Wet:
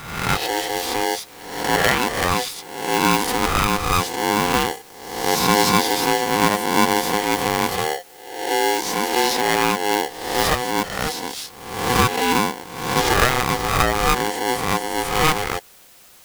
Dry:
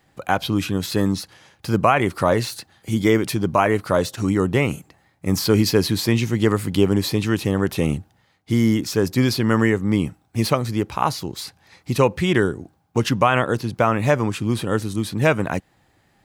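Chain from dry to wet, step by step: spectral swells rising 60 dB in 0.88 s; LFO notch saw up 0.13 Hz 330–4300 Hz; in parallel at -8 dB: requantised 6-bit, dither triangular; on the sum: polarity switched at an audio rate 620 Hz; gain -4.5 dB

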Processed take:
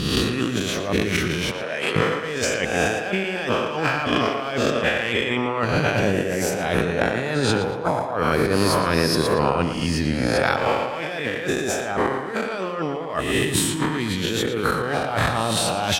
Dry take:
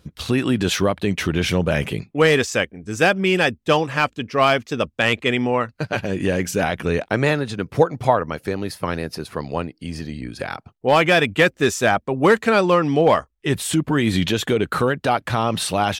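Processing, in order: spectral swells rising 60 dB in 0.91 s; negative-ratio compressor -24 dBFS, ratio -1; 1.51–1.96 BPF 440–7700 Hz; tape echo 0.115 s, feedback 52%, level -8 dB, low-pass 4100 Hz

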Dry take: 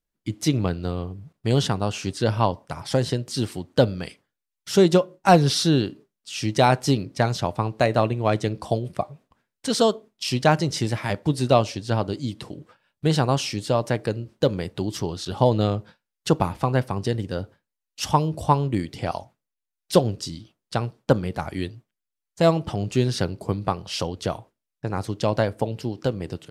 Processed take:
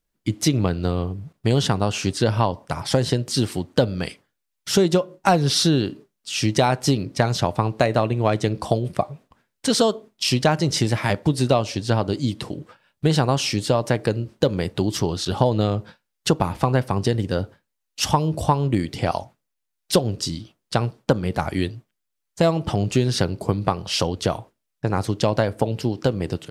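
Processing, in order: compressor 4:1, threshold -21 dBFS, peak gain reduction 10.5 dB; gain +6 dB

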